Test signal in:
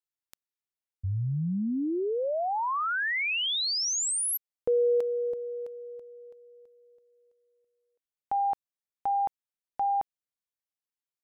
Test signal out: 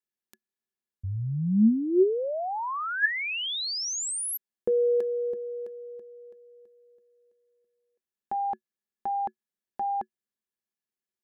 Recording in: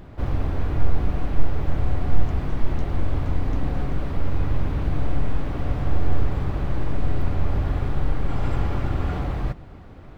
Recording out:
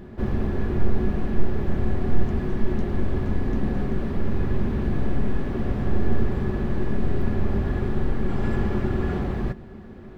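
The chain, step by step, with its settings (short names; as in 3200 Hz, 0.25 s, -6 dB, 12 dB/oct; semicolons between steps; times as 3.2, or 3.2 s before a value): small resonant body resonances 220/370/1700 Hz, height 15 dB, ringing for 85 ms; gain -2.5 dB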